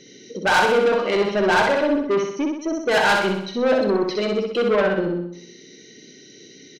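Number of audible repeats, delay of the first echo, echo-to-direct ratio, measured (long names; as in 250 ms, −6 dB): 6, 63 ms, −2.5 dB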